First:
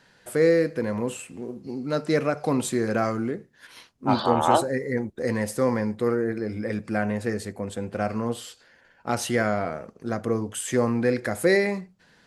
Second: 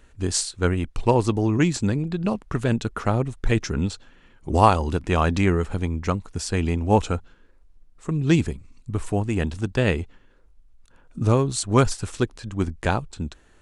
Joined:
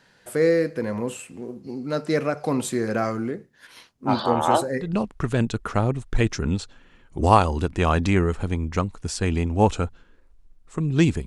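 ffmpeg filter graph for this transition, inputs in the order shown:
ffmpeg -i cue0.wav -i cue1.wav -filter_complex "[0:a]apad=whole_dur=11.26,atrim=end=11.26,atrim=end=4.89,asetpts=PTS-STARTPTS[link_01];[1:a]atrim=start=2.08:end=8.57,asetpts=PTS-STARTPTS[link_02];[link_01][link_02]acrossfade=duration=0.12:curve1=tri:curve2=tri" out.wav

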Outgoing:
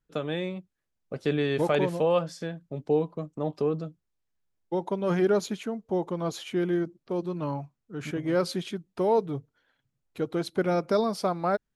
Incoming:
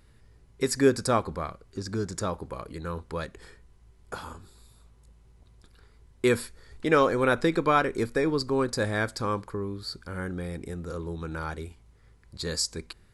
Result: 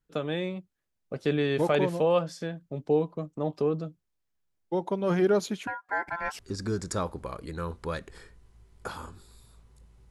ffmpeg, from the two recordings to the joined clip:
ffmpeg -i cue0.wav -i cue1.wav -filter_complex "[0:a]asettb=1/sr,asplit=3[link_01][link_02][link_03];[link_01]atrim=end=5.674[link_04];[link_02]atrim=start=5.67:end=6.39,asetpts=PTS-STARTPTS,afade=type=in:duration=0.004:curve=qsin,afade=type=out:start_time=0.716:duration=0.004:curve=qsin,aeval=exprs='val(0)*sin(2*PI*1200*n/s)':channel_layout=same[link_05];[link_03]atrim=start=6.386[link_06];[link_04][link_05]acrossfade=duration=0.004:curve1=hsin:curve2=qsin[link_07];[link_07][link_06]acrossfade=duration=0.004:curve1=qsin:curve2=hsin,apad=whole_dur=10.1,atrim=end=10.1,atrim=end=6.392[link_08];[1:a]atrim=start=1.658:end=5.37[link_09];[link_08][link_09]acrossfade=duration=0.004:curve1=hsin:curve2=hsin" out.wav

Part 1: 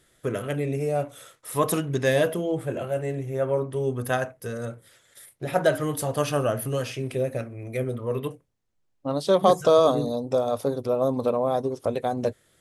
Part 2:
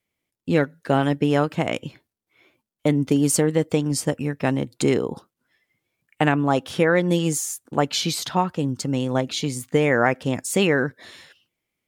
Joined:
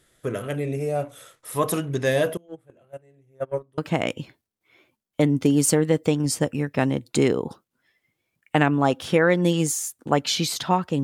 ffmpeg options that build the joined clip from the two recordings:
ffmpeg -i cue0.wav -i cue1.wav -filter_complex "[0:a]asettb=1/sr,asplit=3[link_01][link_02][link_03];[link_01]atrim=end=2.374[link_04];[link_02]atrim=start=2.37:end=3.78,asetpts=PTS-STARTPTS,afade=type=in:duration=0.004:curve=qsin,afade=type=out:start_time=1.406:duration=0.004:curve=qsin,agate=range=-27dB:threshold=-23dB:ratio=16:release=100:detection=peak[link_05];[link_03]atrim=start=3.776[link_06];[link_04][link_05]acrossfade=duration=0.004:curve1=hsin:curve2=qsin[link_07];[link_07][link_06]acrossfade=duration=0.004:curve1=qsin:curve2=hsin,apad=whole_dur=11.03,atrim=end=11.03,atrim=end=3.782[link_08];[1:a]atrim=start=1.438:end=8.69[link_09];[link_08][link_09]acrossfade=duration=0.004:curve1=hsin:curve2=hsin" out.wav

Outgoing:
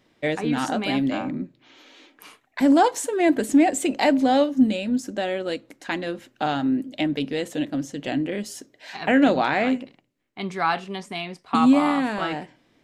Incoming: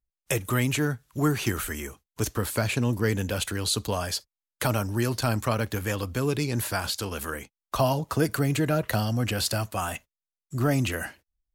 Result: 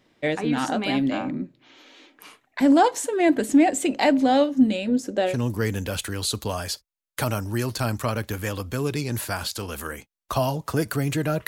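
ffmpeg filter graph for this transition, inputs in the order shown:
ffmpeg -i cue0.wav -i cue1.wav -filter_complex "[0:a]asettb=1/sr,asplit=3[link_01][link_02][link_03];[link_01]atrim=end=4.874[link_04];[link_02]atrim=start=4.87:end=5.37,asetpts=PTS-STARTPTS,afade=type=in:duration=0.004:curve=qsin,afade=type=out:start_time=0.496:duration=0.004:curve=qsin,equalizer=frequency=480:width=2.5:gain=10[link_05];[link_03]atrim=start=5.366[link_06];[link_04][link_05]acrossfade=duration=0.004:curve1=hsin:curve2=qsin[link_07];[link_07][link_06]acrossfade=duration=0.004:curve1=qsin:curve2=hsin,apad=whole_dur=11.47,atrim=end=11.47,atrim=end=5.37,asetpts=PTS-STARTPTS[link_08];[1:a]atrim=start=2.68:end=8.9,asetpts=PTS-STARTPTS[link_09];[link_08][link_09]acrossfade=duration=0.12:curve1=tri:curve2=tri" out.wav

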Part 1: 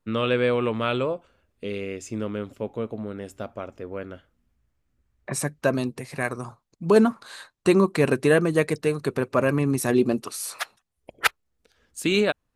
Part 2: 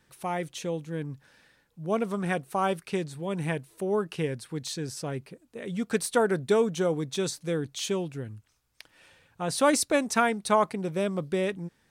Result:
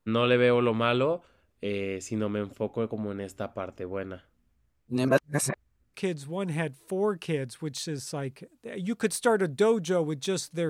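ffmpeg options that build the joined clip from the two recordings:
ffmpeg -i cue0.wav -i cue1.wav -filter_complex "[0:a]apad=whole_dur=10.69,atrim=end=10.69,asplit=2[link_01][link_02];[link_01]atrim=end=4.882[link_03];[link_02]atrim=start=4.878:end=5.942,asetpts=PTS-STARTPTS,areverse[link_04];[1:a]atrim=start=2.838:end=7.59[link_05];[link_03][link_04]acrossfade=duration=0.004:curve1=hsin:curve2=hsin[link_06];[link_06][link_05]acrossfade=duration=0.004:curve1=hsin:curve2=hsin" out.wav

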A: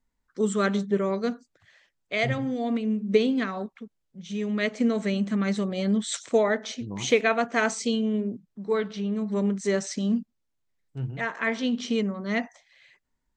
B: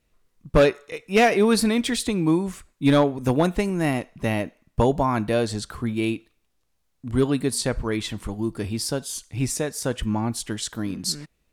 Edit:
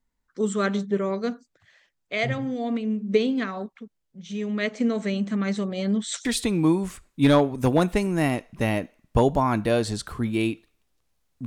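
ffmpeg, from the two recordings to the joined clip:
ffmpeg -i cue0.wav -i cue1.wav -filter_complex "[0:a]apad=whole_dur=11.46,atrim=end=11.46,atrim=end=6.252[link_01];[1:a]atrim=start=1.878:end=7.09[link_02];[link_01][link_02]acrossfade=duration=0.004:curve1=hsin:curve2=hsin" out.wav

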